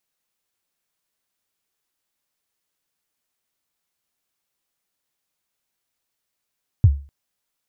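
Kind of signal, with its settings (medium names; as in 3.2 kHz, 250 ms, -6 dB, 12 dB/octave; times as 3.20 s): kick drum length 0.25 s, from 120 Hz, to 70 Hz, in 50 ms, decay 0.35 s, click off, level -5 dB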